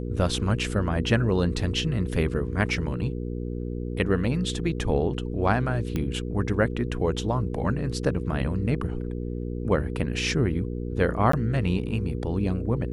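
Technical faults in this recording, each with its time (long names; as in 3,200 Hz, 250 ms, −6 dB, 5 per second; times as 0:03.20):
mains hum 60 Hz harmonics 8 −31 dBFS
0:05.96: click −15 dBFS
0:11.32–0:11.33: drop-out 14 ms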